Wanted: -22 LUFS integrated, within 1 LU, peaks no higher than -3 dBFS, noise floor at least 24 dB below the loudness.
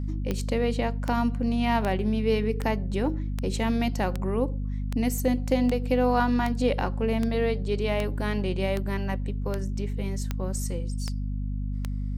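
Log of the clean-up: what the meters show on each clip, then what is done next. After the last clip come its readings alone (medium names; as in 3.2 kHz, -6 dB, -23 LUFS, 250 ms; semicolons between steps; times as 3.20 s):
clicks found 16; hum 50 Hz; highest harmonic 250 Hz; hum level -27 dBFS; loudness -27.5 LUFS; peak level -11.0 dBFS; loudness target -22.0 LUFS
-> de-click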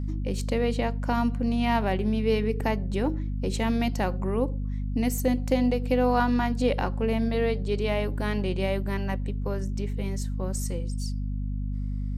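clicks found 0; hum 50 Hz; highest harmonic 250 Hz; hum level -27 dBFS
-> hum notches 50/100/150/200/250 Hz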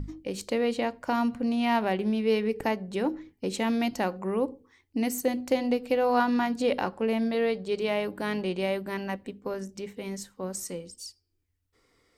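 hum not found; loudness -29.0 LUFS; peak level -12.5 dBFS; loudness target -22.0 LUFS
-> trim +7 dB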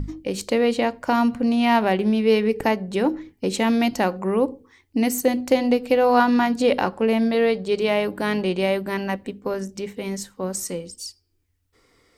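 loudness -22.0 LUFS; peak level -5.5 dBFS; noise floor -67 dBFS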